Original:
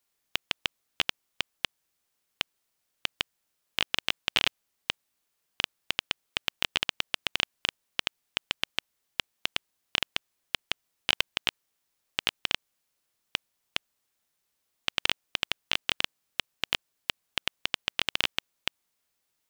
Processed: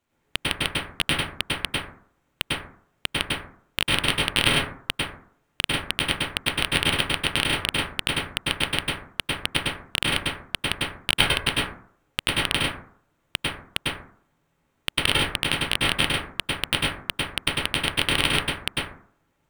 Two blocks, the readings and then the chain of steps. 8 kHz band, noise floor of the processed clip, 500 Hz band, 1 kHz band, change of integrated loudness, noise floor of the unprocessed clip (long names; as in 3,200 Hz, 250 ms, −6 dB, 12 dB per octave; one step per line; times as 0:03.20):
+11.0 dB, −71 dBFS, +11.5 dB, +9.5 dB, +7.0 dB, −79 dBFS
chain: running median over 9 samples
low-shelf EQ 240 Hz +10.5 dB
dense smooth reverb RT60 0.55 s, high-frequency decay 0.35×, pre-delay 90 ms, DRR −5.5 dB
level +6 dB